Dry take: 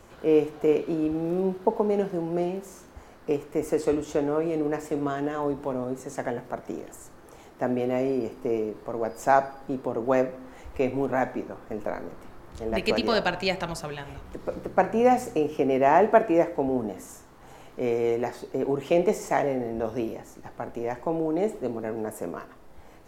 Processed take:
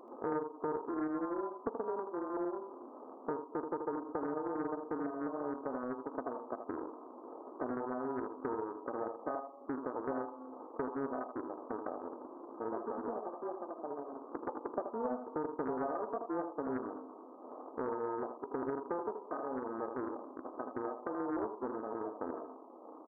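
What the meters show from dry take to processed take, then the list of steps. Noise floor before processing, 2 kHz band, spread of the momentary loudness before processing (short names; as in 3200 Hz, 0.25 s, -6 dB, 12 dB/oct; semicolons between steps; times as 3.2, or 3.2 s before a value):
-50 dBFS, -16.5 dB, 14 LU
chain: sample sorter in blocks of 32 samples; compressor 5:1, threshold -39 dBFS, peak gain reduction 24 dB; brick-wall FIR band-pass 230–1300 Hz; echo 80 ms -7 dB; Doppler distortion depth 0.35 ms; gain +4 dB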